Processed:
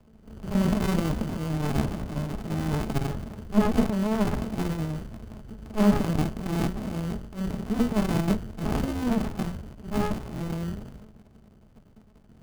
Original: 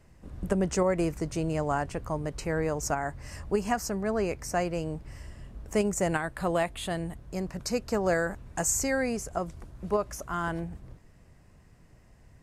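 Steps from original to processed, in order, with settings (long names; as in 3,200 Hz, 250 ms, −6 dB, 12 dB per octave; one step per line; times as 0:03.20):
mains-hum notches 60/120/180/240/300/360/420/480/540/600 Hz
transient designer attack −12 dB, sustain +10 dB
decimation without filtering 29×
hollow resonant body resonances 220/420 Hz, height 16 dB, ringing for 95 ms
windowed peak hold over 65 samples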